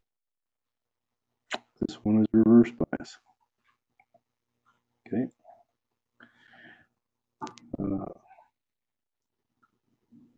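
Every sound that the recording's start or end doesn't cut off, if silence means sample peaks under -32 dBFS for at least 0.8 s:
1.52–3.03 s
5.12–5.25 s
7.42–8.08 s

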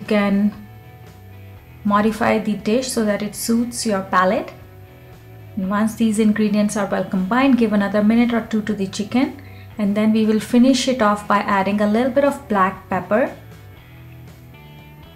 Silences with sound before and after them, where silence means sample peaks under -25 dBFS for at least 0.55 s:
0.53–1.85 s
4.49–5.57 s

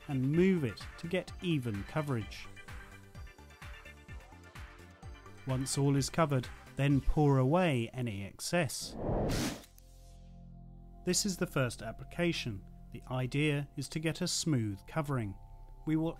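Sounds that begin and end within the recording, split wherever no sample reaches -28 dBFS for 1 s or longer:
5.50–9.49 s

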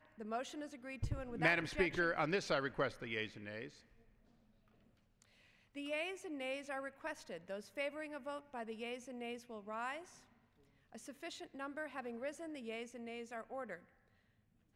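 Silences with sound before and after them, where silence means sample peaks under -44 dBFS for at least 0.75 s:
3.66–5.76 s
9.99–10.95 s

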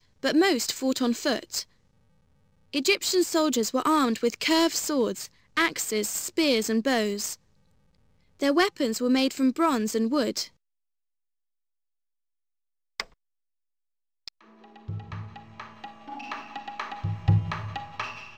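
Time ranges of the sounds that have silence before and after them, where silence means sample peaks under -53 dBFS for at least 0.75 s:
2.73–10.50 s
13.00–13.13 s

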